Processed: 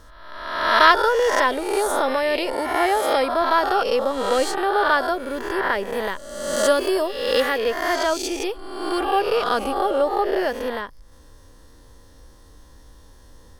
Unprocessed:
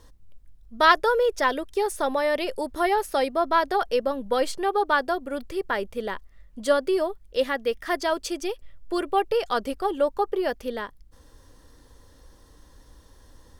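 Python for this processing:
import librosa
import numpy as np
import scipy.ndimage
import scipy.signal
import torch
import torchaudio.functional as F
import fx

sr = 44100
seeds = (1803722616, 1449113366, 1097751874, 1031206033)

y = fx.spec_swells(x, sr, rise_s=1.09)
y = fx.highpass(y, sr, hz=51.0, slope=12, at=(2.53, 3.17))
y = fx.high_shelf(y, sr, hz=4700.0, db=8.5, at=(5.93, 7.58))
y = y * librosa.db_to_amplitude(1.0)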